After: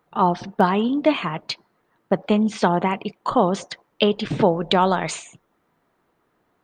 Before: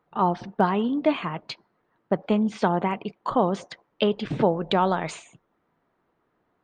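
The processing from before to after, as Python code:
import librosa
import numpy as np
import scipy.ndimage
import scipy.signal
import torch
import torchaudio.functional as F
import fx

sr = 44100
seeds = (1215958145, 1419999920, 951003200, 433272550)

y = fx.high_shelf(x, sr, hz=3900.0, db=8.5)
y = y * librosa.db_to_amplitude(3.5)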